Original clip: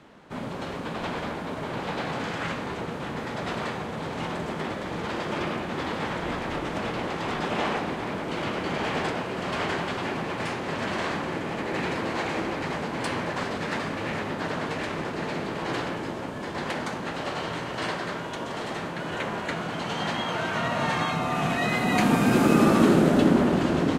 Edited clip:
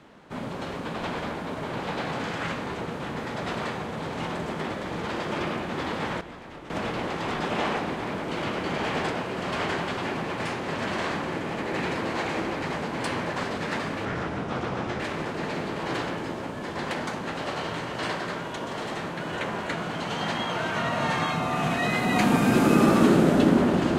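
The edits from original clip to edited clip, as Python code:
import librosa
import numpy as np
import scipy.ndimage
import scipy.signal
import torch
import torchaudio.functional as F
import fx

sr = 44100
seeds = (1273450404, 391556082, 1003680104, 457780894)

y = fx.edit(x, sr, fx.clip_gain(start_s=6.21, length_s=0.49, db=-12.0),
    fx.speed_span(start_s=14.05, length_s=0.74, speed=0.78), tone=tone)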